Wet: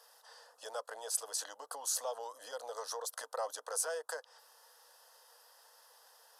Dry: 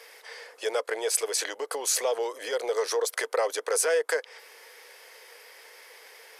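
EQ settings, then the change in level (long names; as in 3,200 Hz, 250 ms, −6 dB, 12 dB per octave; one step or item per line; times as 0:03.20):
phaser with its sweep stopped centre 920 Hz, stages 4
−7.5 dB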